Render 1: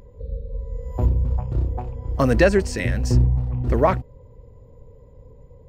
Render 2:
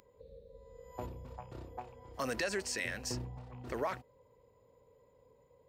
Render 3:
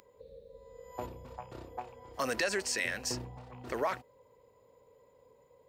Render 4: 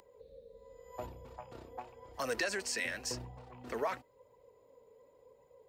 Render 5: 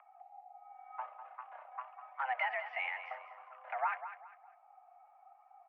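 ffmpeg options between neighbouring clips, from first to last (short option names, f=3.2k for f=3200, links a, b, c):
-filter_complex "[0:a]highpass=f=1.2k:p=1,acrossover=split=4400[a][b];[a]alimiter=limit=-22dB:level=0:latency=1[c];[c][b]amix=inputs=2:normalize=0,volume=-4dB"
-af "lowshelf=f=220:g=-8.5,volume=4.5dB"
-filter_complex "[0:a]acrossover=split=420|510|7900[a][b][c][d];[b]acompressor=mode=upward:threshold=-54dB:ratio=2.5[e];[a][e][c][d]amix=inputs=4:normalize=0,flanger=delay=1:depth=3.8:regen=55:speed=0.92:shape=triangular,volume=1dB"
-filter_complex "[0:a]asplit=2[a][b];[b]aecho=0:1:200|400|600:0.266|0.0798|0.0239[c];[a][c]amix=inputs=2:normalize=0,highpass=f=380:t=q:w=0.5412,highpass=f=380:t=q:w=1.307,lowpass=f=2.2k:t=q:w=0.5176,lowpass=f=2.2k:t=q:w=0.7071,lowpass=f=2.2k:t=q:w=1.932,afreqshift=270,volume=1dB"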